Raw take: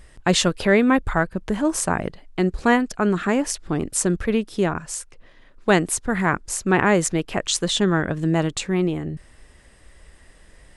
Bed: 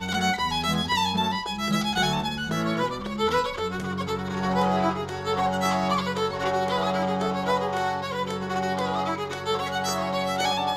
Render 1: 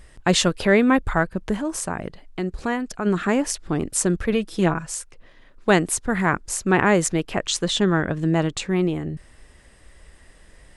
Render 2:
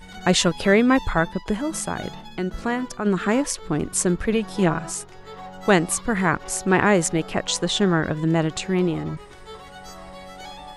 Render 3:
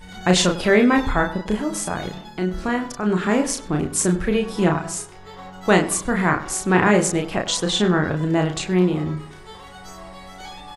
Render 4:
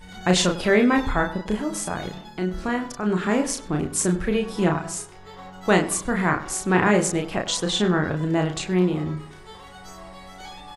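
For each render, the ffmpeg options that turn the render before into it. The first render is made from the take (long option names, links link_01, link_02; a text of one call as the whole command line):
ffmpeg -i in.wav -filter_complex "[0:a]asplit=3[link_01][link_02][link_03];[link_01]afade=type=out:start_time=1.56:duration=0.02[link_04];[link_02]acompressor=threshold=-31dB:ratio=1.5:attack=3.2:release=140:knee=1:detection=peak,afade=type=in:start_time=1.56:duration=0.02,afade=type=out:start_time=3.05:duration=0.02[link_05];[link_03]afade=type=in:start_time=3.05:duration=0.02[link_06];[link_04][link_05][link_06]amix=inputs=3:normalize=0,asettb=1/sr,asplit=3[link_07][link_08][link_09];[link_07]atrim=end=4.324[link_10];[link_08]atrim=start=4.32:end=4.87,asetpts=PTS-STARTPTS,afade=type=in:duration=0.004:curve=qsin,afade=type=out:start_time=0.546:duration=0.004:curve=qsin,aecho=1:1:6.1:0.63,atrim=end_sample=24255[link_11];[link_09]atrim=start=4.866[link_12];[link_10][link_11]acrossfade=duration=0.004:curve1=hsin:curve2=qsin[link_13];[link_13][link_12]acrossfade=duration=0.004:curve1=qsin:curve2=hsin,asettb=1/sr,asplit=3[link_14][link_15][link_16];[link_14]atrim=end=7.324[link_17];[link_15]atrim=start=7.32:end=8.69,asetpts=PTS-STARTPTS,afade=type=in:duration=0.004:curve=qsin,afade=type=out:start_time=1.366:duration=0.004:curve=qsin,highshelf=frequency=10000:gain=-9[link_18];[link_16]atrim=start=8.686[link_19];[link_17][link_18]acrossfade=duration=0.004:curve1=hsin:curve2=qsin[link_20];[link_20][link_19]acrossfade=duration=0.004:curve1=qsin:curve2=hsin" out.wav
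ffmpeg -i in.wav -i bed.wav -filter_complex "[1:a]volume=-14dB[link_01];[0:a][link_01]amix=inputs=2:normalize=0" out.wav
ffmpeg -i in.wav -filter_complex "[0:a]asplit=2[link_01][link_02];[link_02]adelay=33,volume=-4dB[link_03];[link_01][link_03]amix=inputs=2:normalize=0,asplit=2[link_04][link_05];[link_05]adelay=98,lowpass=frequency=1900:poles=1,volume=-13.5dB,asplit=2[link_06][link_07];[link_07]adelay=98,lowpass=frequency=1900:poles=1,volume=0.4,asplit=2[link_08][link_09];[link_09]adelay=98,lowpass=frequency=1900:poles=1,volume=0.4,asplit=2[link_10][link_11];[link_11]adelay=98,lowpass=frequency=1900:poles=1,volume=0.4[link_12];[link_04][link_06][link_08][link_10][link_12]amix=inputs=5:normalize=0" out.wav
ffmpeg -i in.wav -af "volume=-2.5dB" out.wav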